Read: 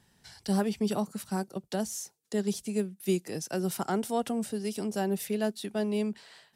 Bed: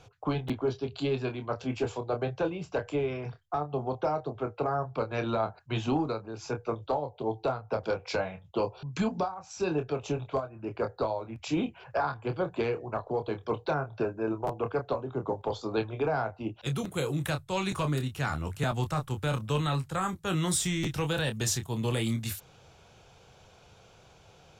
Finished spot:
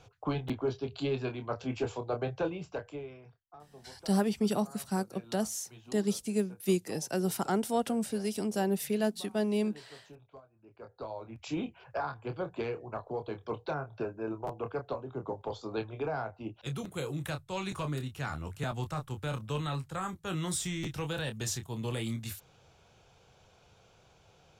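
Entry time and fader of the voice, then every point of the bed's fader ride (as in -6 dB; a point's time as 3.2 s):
3.60 s, 0.0 dB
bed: 2.56 s -2.5 dB
3.46 s -22 dB
10.7 s -22 dB
11.23 s -5.5 dB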